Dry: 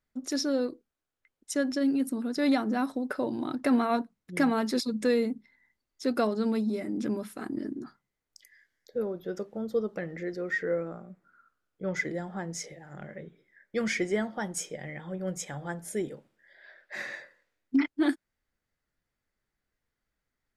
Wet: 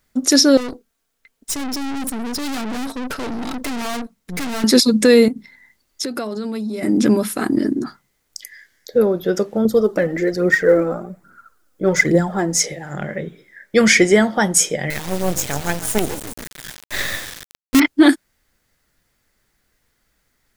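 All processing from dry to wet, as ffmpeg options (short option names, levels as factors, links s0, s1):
-filter_complex "[0:a]asettb=1/sr,asplit=3[s0][s1][s2];[s0]atrim=end=0.574[s3];[s1]atrim=start=0.57:end=4.64,asetpts=PTS-STARTPTS,afade=t=in:d=0.004:c=qsin,afade=t=out:st=4.066:d=0.004:c=qsin,aecho=1:1:4.4:0.52,atrim=end_sample=179487,aeval=exprs='(tanh(112*val(0)+0.75)-tanh(0.75))/112':c=same[s4];[s2]atrim=start=4.636[s5];[s3][s4]acrossfade=d=0.004:c1=hsin:c2=qsin[s6];[s6][s5]acrossfade=d=0.004:c1=qsin:c2=hsin,asettb=1/sr,asplit=3[s7][s8][s9];[s7]atrim=end=5.284[s10];[s8]atrim=start=5.28:end=6.83,asetpts=PTS-STARTPTS,afade=t=in:d=0.004:c=qsin,afade=t=out:st=1.546:d=0.004:c=qsin,bandreject=f=60:t=h:w=6,bandreject=f=120:t=h:w=6,bandreject=f=180:t=h:w=6,acompressor=threshold=0.0112:ratio=6:attack=3.2:release=140:knee=1:detection=peak[s11];[s9]atrim=start=6.826[s12];[s10][s11]acrossfade=d=0.004:c1=hsin:c2=qsin[s13];[s13][s12]acrossfade=d=0.004:c1=qsin:c2=hsin,asettb=1/sr,asplit=3[s14][s15][s16];[s14]atrim=end=9.654[s17];[s15]atrim=start=9.65:end=12.6,asetpts=PTS-STARTPTS,afade=t=in:d=0.004:c=qsin,afade=t=out:st=2.946:d=0.004:c=qsin,aphaser=in_gain=1:out_gain=1:delay=4.1:decay=0.52:speed=1.2:type=triangular,equalizer=f=2800:w=0.7:g=-6[s18];[s16]atrim=start=12.596[s19];[s17][s18]acrossfade=d=0.004:c1=hsin:c2=qsin[s20];[s20][s19]acrossfade=d=0.004:c1=qsin:c2=hsin,asettb=1/sr,asplit=3[s21][s22][s23];[s21]atrim=end=14.904[s24];[s22]atrim=start=14.9:end=17.8,asetpts=PTS-STARTPTS,afade=t=in:d=0.004:c=qsin,afade=t=out:st=2.896:d=0.004:c=qsin,asplit=8[s25][s26][s27][s28][s29][s30][s31][s32];[s26]adelay=140,afreqshift=-50,volume=0.211[s33];[s27]adelay=280,afreqshift=-100,volume=0.135[s34];[s28]adelay=420,afreqshift=-150,volume=0.0861[s35];[s29]adelay=560,afreqshift=-200,volume=0.0556[s36];[s30]adelay=700,afreqshift=-250,volume=0.0355[s37];[s31]adelay=840,afreqshift=-300,volume=0.0226[s38];[s32]adelay=980,afreqshift=-350,volume=0.0145[s39];[s25][s33][s34][s35][s36][s37][s38][s39]amix=inputs=8:normalize=0,atrim=end_sample=127890,acrusher=bits=5:dc=4:mix=0:aa=0.000001[s40];[s23]atrim=start=17.796[s41];[s24][s40]acrossfade=d=0.004:c1=hsin:c2=qsin[s42];[s42][s41]acrossfade=d=0.004:c1=qsin:c2=hsin,highshelf=f=3700:g=7,alimiter=level_in=7.08:limit=0.891:release=50:level=0:latency=1,volume=0.891"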